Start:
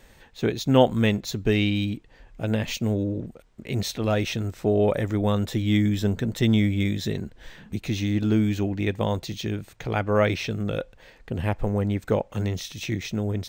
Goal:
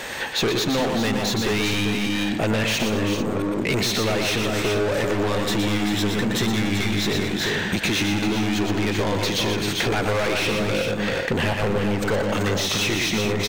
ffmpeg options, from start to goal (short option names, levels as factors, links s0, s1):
-filter_complex "[0:a]asplit=2[s0][s1];[s1]highpass=f=720:p=1,volume=63.1,asoftclip=type=tanh:threshold=0.562[s2];[s0][s2]amix=inputs=2:normalize=0,lowpass=f=5500:p=1,volume=0.501,asplit=2[s3][s4];[s4]aecho=0:1:119|212|388|441:0.562|0.211|0.501|0.266[s5];[s3][s5]amix=inputs=2:normalize=0,acompressor=threshold=0.141:ratio=6,volume=0.708"